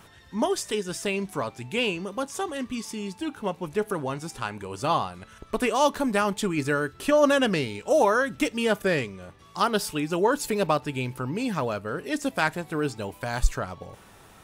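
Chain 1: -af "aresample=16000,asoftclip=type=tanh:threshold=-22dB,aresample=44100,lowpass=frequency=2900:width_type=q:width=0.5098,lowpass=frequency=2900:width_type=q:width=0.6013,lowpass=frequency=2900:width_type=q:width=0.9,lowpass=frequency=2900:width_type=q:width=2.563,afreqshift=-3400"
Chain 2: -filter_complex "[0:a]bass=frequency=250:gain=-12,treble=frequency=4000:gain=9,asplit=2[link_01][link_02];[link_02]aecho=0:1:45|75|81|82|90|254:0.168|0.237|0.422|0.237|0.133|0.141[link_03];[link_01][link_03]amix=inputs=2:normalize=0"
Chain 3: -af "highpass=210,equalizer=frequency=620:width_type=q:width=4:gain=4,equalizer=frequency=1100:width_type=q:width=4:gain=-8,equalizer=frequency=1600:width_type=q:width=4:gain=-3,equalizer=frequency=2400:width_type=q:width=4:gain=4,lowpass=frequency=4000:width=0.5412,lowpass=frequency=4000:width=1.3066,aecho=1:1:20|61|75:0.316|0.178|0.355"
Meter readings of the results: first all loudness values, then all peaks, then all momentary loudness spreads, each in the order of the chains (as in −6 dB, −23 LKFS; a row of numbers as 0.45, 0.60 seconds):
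−27.5, −25.5, −25.5 LKFS; −15.0, −6.0, −6.5 dBFS; 8, 11, 14 LU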